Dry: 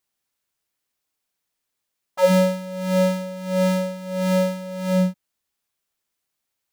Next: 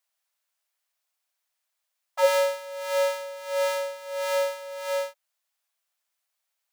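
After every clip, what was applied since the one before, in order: elliptic high-pass 590 Hz, stop band 80 dB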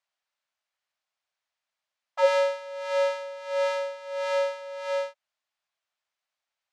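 distance through air 110 m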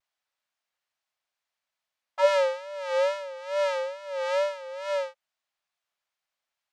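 vibrato 2.3 Hz 98 cents

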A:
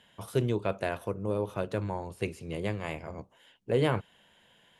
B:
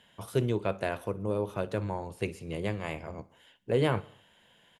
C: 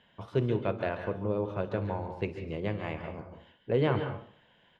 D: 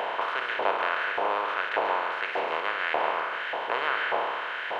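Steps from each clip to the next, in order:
feedback delay 61 ms, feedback 58%, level -22 dB
distance through air 210 m; on a send at -7 dB: reverberation RT60 0.45 s, pre-delay 133 ms
spectral levelling over time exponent 0.2; LFO high-pass saw up 1.7 Hz 780–1700 Hz

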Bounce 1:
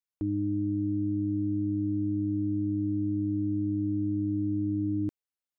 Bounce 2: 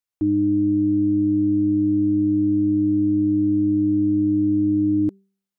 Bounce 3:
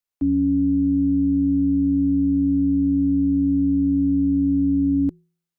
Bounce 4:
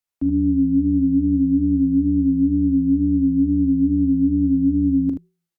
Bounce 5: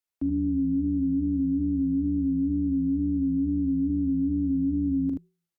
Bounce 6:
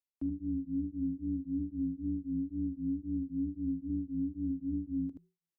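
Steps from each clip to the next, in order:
de-hum 195.4 Hz, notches 2; dynamic bell 360 Hz, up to +8 dB, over -44 dBFS, Q 0.78; trim +3.5 dB
frequency shift -28 Hz
wow and flutter 66 cents; on a send: early reflections 40 ms -11.5 dB, 77 ms -7 dB
peak limiter -16 dBFS, peak gain reduction 6.5 dB; trim -3.5 dB
tremolo of two beating tones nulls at 3.8 Hz; trim -7 dB

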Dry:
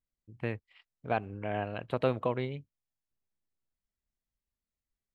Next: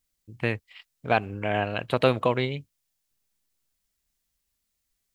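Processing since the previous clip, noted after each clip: treble shelf 2.3 kHz +11 dB; trim +6.5 dB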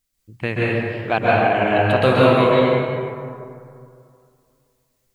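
plate-style reverb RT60 2.4 s, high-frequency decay 0.45×, pre-delay 120 ms, DRR -7 dB; trim +2 dB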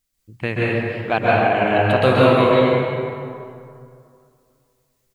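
feedback delay 281 ms, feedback 29%, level -15 dB

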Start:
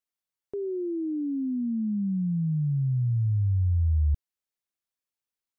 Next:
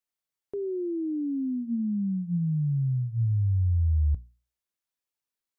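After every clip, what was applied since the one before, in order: hum notches 60/120/180/240 Hz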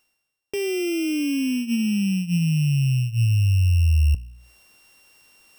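sorted samples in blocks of 16 samples; reverse; upward compressor, threshold -38 dBFS; reverse; trim +6 dB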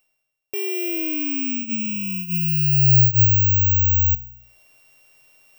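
graphic EQ with 31 bands 125 Hz +10 dB, 200 Hz -5 dB, 630 Hz +11 dB, 2.5 kHz +8 dB; careless resampling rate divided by 2×, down none, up zero stuff; trim -4.5 dB

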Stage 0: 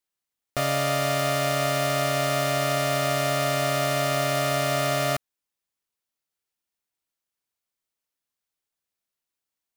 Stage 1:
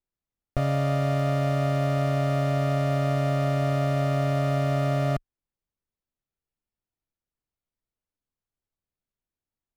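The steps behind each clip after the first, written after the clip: tilt EQ -4 dB/octave; trim -5 dB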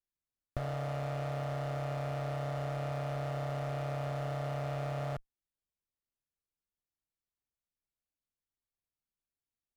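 one-sided clip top -32.5 dBFS; trim -8 dB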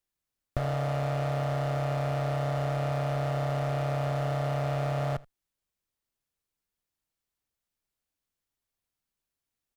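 delay 79 ms -23 dB; trim +6.5 dB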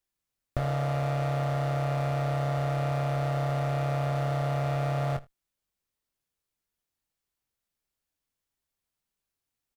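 doubling 23 ms -8.5 dB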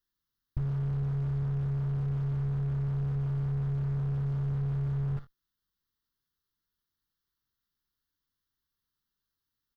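static phaser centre 2.4 kHz, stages 6; slew-rate limiter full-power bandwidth 3.8 Hz; trim +2.5 dB

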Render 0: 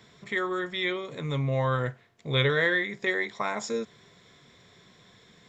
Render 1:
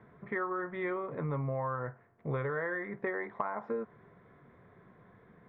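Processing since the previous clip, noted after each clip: low-pass 1.6 kHz 24 dB/octave; dynamic bell 1 kHz, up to +8 dB, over -44 dBFS, Q 0.84; compression 10:1, threshold -31 dBFS, peak gain reduction 13.5 dB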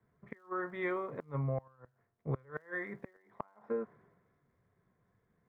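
inverted gate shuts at -25 dBFS, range -26 dB; crackle 480 per s -69 dBFS; three bands expanded up and down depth 70%; trim -2 dB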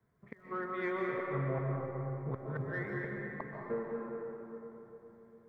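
in parallel at -8 dB: saturation -31 dBFS, distortion -15 dB; on the sum: reverberation RT60 3.7 s, pre-delay 105 ms, DRR -2.5 dB; trim -4 dB

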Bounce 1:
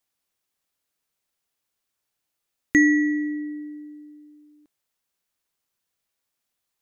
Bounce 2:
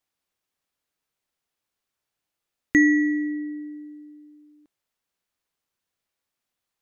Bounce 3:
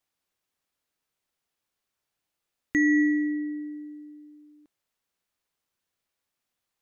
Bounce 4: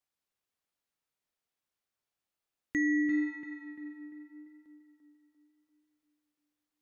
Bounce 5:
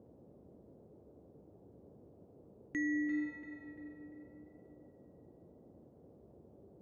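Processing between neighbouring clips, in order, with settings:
treble shelf 5.2 kHz -6.5 dB
peak limiter -15 dBFS, peak gain reduction 7 dB
tape echo 343 ms, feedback 56%, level -5.5 dB, low-pass 2.3 kHz; trim -7 dB
band noise 62–530 Hz -53 dBFS; trim -6.5 dB

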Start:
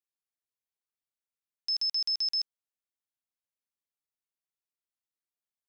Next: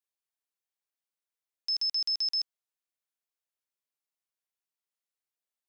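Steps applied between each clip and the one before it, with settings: high-pass 340 Hz 12 dB/octave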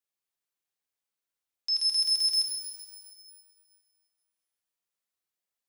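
pitch-shifted reverb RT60 1.9 s, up +12 st, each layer -8 dB, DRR 2 dB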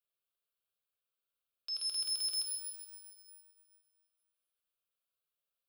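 static phaser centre 1.3 kHz, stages 8

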